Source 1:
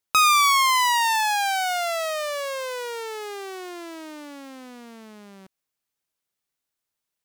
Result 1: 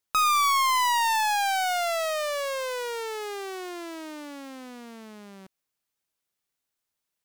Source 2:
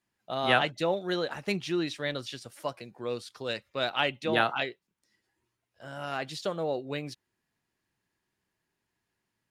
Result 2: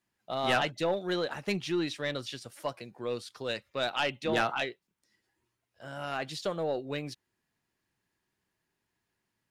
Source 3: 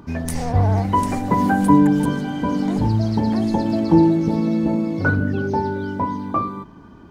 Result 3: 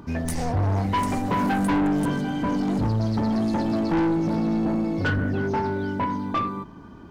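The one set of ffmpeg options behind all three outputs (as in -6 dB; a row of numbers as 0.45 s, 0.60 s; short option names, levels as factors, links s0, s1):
-af "aeval=exprs='(tanh(8.91*val(0)+0.1)-tanh(0.1))/8.91':c=same"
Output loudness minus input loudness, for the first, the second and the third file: -4.0 LU, -1.5 LU, -5.0 LU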